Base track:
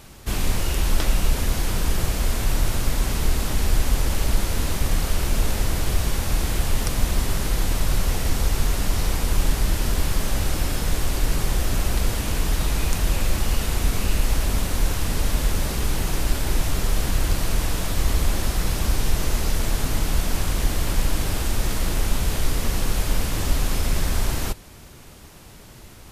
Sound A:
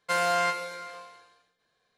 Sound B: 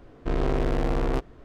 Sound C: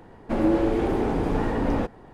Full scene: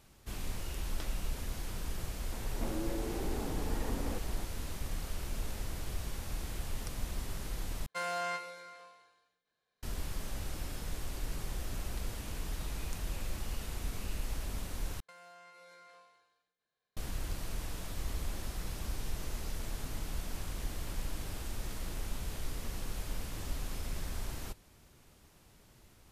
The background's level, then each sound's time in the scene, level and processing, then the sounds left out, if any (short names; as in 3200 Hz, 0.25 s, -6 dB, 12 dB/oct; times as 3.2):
base track -16.5 dB
2.32 add C -0.5 dB + compressor, threshold -36 dBFS
7.86 replace with A -10.5 dB
15 replace with A -15 dB + compressor 10:1, threshold -37 dBFS
not used: B